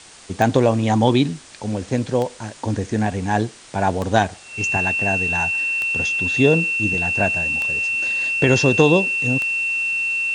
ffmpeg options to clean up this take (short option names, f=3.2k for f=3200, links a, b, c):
-af "adeclick=t=4,bandreject=f=2.7k:w=30,afwtdn=0.0089"